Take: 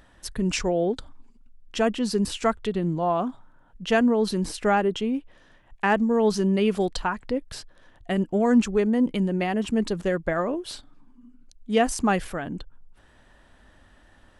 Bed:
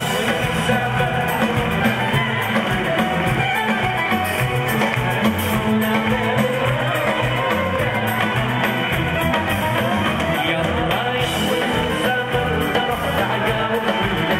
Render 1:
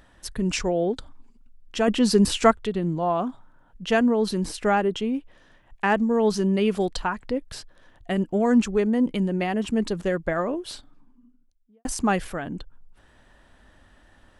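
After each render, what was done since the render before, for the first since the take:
0:01.88–0:02.51: clip gain +6 dB
0:10.67–0:11.85: fade out and dull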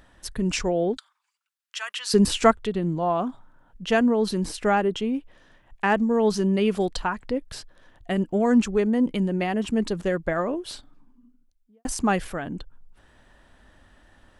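0:00.97–0:02.14: high-pass filter 1,200 Hz 24 dB per octave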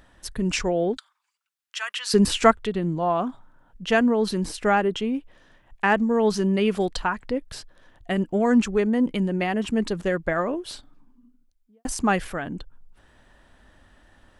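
dynamic equaliser 1,800 Hz, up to +3 dB, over −38 dBFS, Q 0.82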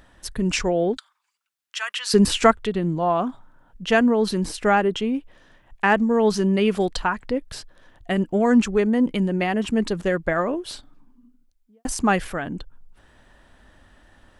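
level +2 dB
brickwall limiter −3 dBFS, peak gain reduction 2 dB

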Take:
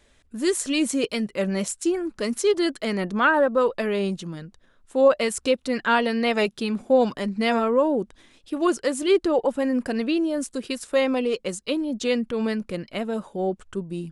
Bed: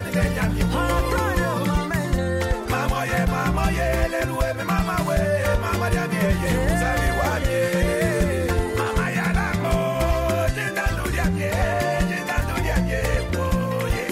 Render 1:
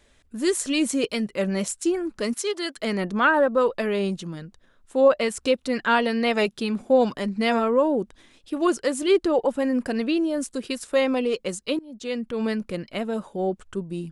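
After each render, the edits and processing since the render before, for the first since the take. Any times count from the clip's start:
0:02.34–0:02.77: high-pass filter 880 Hz 6 dB per octave
0:05.00–0:05.41: high-shelf EQ 6,400 Hz −6.5 dB
0:11.79–0:12.49: fade in, from −23 dB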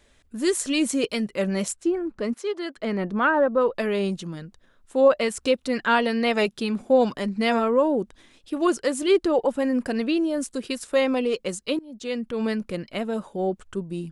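0:01.72–0:03.74: low-pass filter 1,200 Hz → 1,900 Hz 6 dB per octave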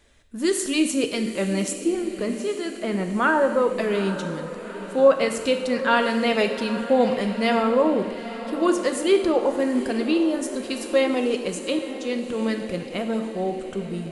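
feedback delay with all-pass diffusion 845 ms, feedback 59%, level −13 dB
reverb whose tail is shaped and stops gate 360 ms falling, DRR 6 dB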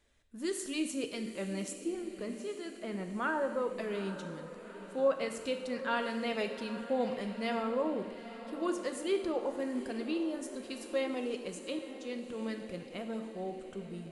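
level −13 dB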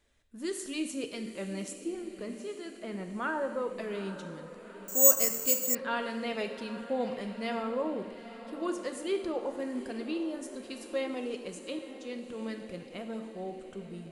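0:04.88–0:05.75: bad sample-rate conversion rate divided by 6×, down filtered, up zero stuff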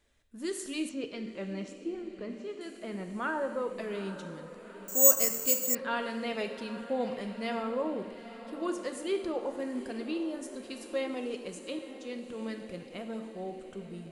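0:00.89–0:02.61: high-frequency loss of the air 140 metres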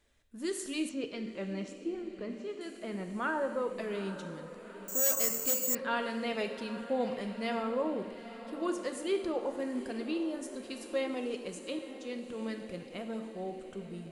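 hard clipping −17.5 dBFS, distortion −8 dB

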